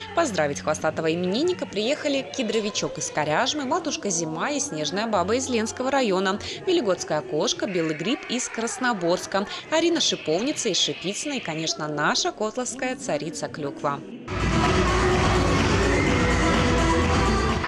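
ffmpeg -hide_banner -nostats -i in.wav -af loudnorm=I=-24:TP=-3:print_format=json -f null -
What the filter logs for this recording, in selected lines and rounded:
"input_i" : "-23.3",
"input_tp" : "-8.9",
"input_lra" : "4.0",
"input_thresh" : "-33.3",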